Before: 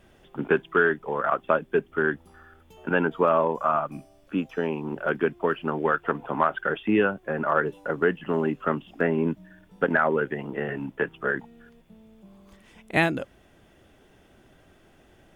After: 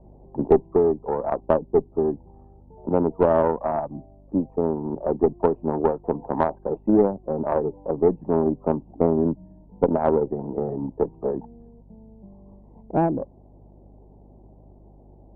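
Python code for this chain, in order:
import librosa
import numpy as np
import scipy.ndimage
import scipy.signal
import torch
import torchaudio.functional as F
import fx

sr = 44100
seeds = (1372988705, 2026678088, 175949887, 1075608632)

p1 = fx.rider(x, sr, range_db=10, speed_s=2.0)
p2 = x + F.gain(torch.from_numpy(p1), -3.0).numpy()
p3 = fx.add_hum(p2, sr, base_hz=50, snr_db=26)
p4 = scipy.signal.sosfilt(scipy.signal.ellip(4, 1.0, 40, 920.0, 'lowpass', fs=sr, output='sos'), p3)
y = fx.cheby_harmonics(p4, sr, harmonics=(2, 6, 7), levels_db=(-11, -44, -33), full_scale_db=-4.0)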